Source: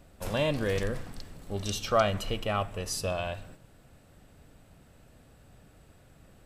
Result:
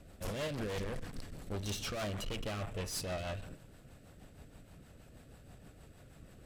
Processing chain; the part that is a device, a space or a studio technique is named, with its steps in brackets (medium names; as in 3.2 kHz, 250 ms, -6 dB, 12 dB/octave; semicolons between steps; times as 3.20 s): overdriven rotary cabinet (valve stage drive 38 dB, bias 0.45; rotary cabinet horn 6.3 Hz); trim +4 dB